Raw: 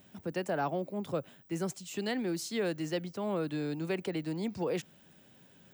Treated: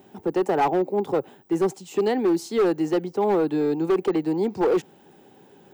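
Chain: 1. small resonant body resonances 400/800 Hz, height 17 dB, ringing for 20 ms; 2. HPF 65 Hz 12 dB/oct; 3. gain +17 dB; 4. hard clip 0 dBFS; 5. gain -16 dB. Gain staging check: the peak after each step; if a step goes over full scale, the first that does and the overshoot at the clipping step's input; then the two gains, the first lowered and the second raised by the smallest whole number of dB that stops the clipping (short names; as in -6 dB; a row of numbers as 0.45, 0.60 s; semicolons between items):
-9.5, -9.0, +8.0, 0.0, -16.0 dBFS; step 3, 8.0 dB; step 3 +9 dB, step 5 -8 dB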